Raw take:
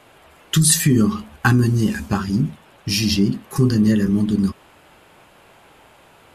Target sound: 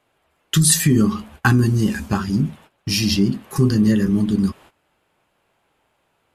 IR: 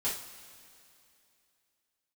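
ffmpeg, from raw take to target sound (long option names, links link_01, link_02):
-af "agate=range=-17dB:threshold=-42dB:ratio=16:detection=peak"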